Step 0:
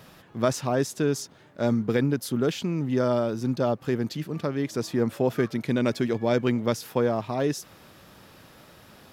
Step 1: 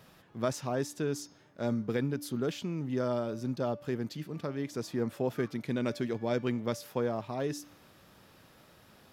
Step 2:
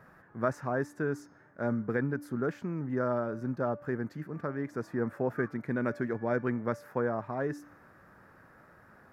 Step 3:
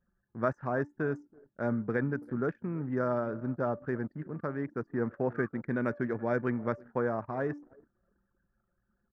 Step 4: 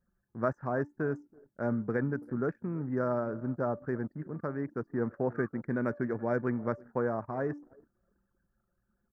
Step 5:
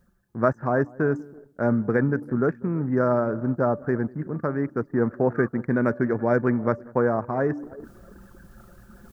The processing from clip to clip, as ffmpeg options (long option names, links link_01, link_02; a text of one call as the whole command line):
ffmpeg -i in.wav -af "bandreject=frequency=291.9:width_type=h:width=4,bandreject=frequency=583.8:width_type=h:width=4,bandreject=frequency=875.7:width_type=h:width=4,bandreject=frequency=1167.6:width_type=h:width=4,bandreject=frequency=1459.5:width_type=h:width=4,bandreject=frequency=1751.4:width_type=h:width=4,bandreject=frequency=2043.3:width_type=h:width=4,bandreject=frequency=2335.2:width_type=h:width=4,bandreject=frequency=2627.1:width_type=h:width=4,bandreject=frequency=2919:width_type=h:width=4,bandreject=frequency=3210.9:width_type=h:width=4,bandreject=frequency=3502.8:width_type=h:width=4,bandreject=frequency=3794.7:width_type=h:width=4,bandreject=frequency=4086.6:width_type=h:width=4,bandreject=frequency=4378.5:width_type=h:width=4,bandreject=frequency=4670.4:width_type=h:width=4,bandreject=frequency=4962.3:width_type=h:width=4,bandreject=frequency=5254.2:width_type=h:width=4,bandreject=frequency=5546.1:width_type=h:width=4,bandreject=frequency=5838:width_type=h:width=4,bandreject=frequency=6129.9:width_type=h:width=4,bandreject=frequency=6421.8:width_type=h:width=4,bandreject=frequency=6713.7:width_type=h:width=4,volume=-7.5dB" out.wav
ffmpeg -i in.wav -af "highshelf=frequency=2300:width_type=q:width=3:gain=-12" out.wav
ffmpeg -i in.wav -af "aecho=1:1:329|658|987:0.0891|0.0303|0.0103,anlmdn=0.0631" out.wav
ffmpeg -i in.wav -af "equalizer=frequency=3100:width_type=o:width=0.83:gain=-12.5" out.wav
ffmpeg -i in.wav -filter_complex "[0:a]areverse,acompressor=mode=upward:threshold=-39dB:ratio=2.5,areverse,asplit=2[link_01][link_02];[link_02]adelay=193,lowpass=frequency=920:poles=1,volume=-23dB,asplit=2[link_03][link_04];[link_04]adelay=193,lowpass=frequency=920:poles=1,volume=0.23[link_05];[link_01][link_03][link_05]amix=inputs=3:normalize=0,volume=9dB" out.wav